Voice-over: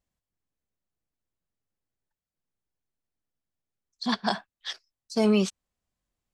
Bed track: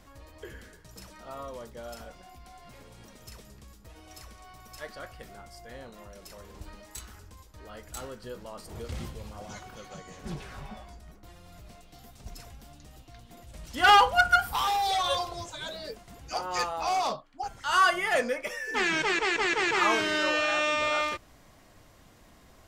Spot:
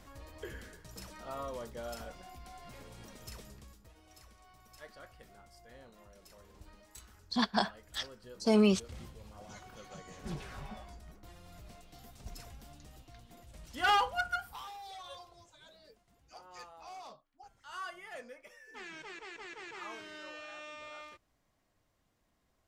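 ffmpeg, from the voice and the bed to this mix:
ffmpeg -i stem1.wav -i stem2.wav -filter_complex "[0:a]adelay=3300,volume=-3dB[link_01];[1:a]volume=7dB,afade=type=out:start_time=3.43:duration=0.52:silence=0.316228,afade=type=in:start_time=9.2:duration=1.15:silence=0.421697,afade=type=out:start_time=12.74:duration=1.98:silence=0.133352[link_02];[link_01][link_02]amix=inputs=2:normalize=0" out.wav

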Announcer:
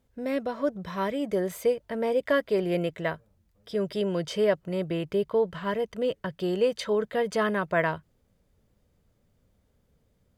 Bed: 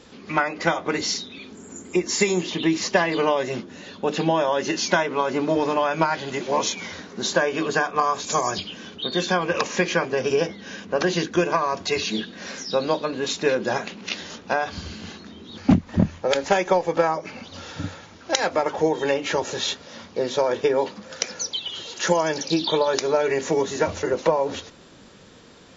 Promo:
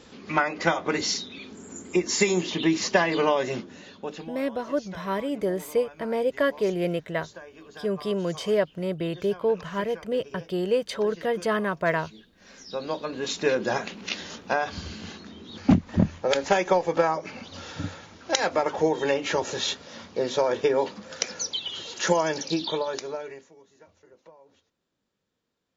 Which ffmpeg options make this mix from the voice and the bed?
ffmpeg -i stem1.wav -i stem2.wav -filter_complex "[0:a]adelay=4100,volume=0.5dB[link_01];[1:a]volume=19.5dB,afade=type=out:start_time=3.49:duration=0.83:silence=0.0841395,afade=type=in:start_time=12.35:duration=1.18:silence=0.0891251,afade=type=out:start_time=22.19:duration=1.3:silence=0.0316228[link_02];[link_01][link_02]amix=inputs=2:normalize=0" out.wav

